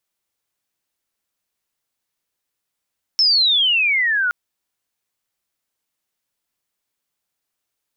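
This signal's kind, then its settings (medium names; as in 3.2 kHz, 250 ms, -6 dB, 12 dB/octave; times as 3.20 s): sweep logarithmic 5.4 kHz -> 1.4 kHz -11.5 dBFS -> -16 dBFS 1.12 s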